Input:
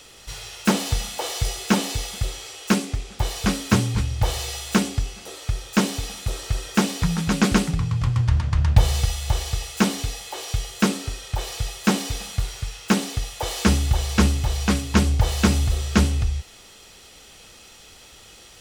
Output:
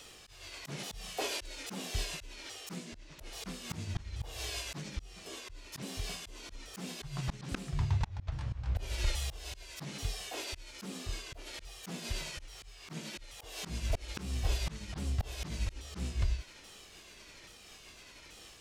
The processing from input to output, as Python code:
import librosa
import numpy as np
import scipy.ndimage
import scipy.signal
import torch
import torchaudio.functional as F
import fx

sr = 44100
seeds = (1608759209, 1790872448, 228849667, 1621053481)

y = fx.pitch_ramps(x, sr, semitones=-6.0, every_ms=832)
y = fx.auto_swell(y, sr, attack_ms=319.0)
y = F.gain(torch.from_numpy(y), -5.5).numpy()